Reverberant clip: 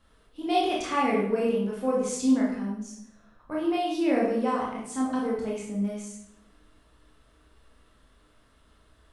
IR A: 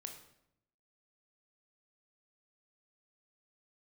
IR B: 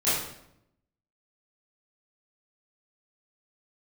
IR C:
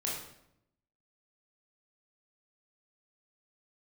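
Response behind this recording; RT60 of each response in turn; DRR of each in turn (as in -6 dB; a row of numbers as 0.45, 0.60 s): C; 0.75, 0.75, 0.75 s; 4.0, -13.5, -4.5 dB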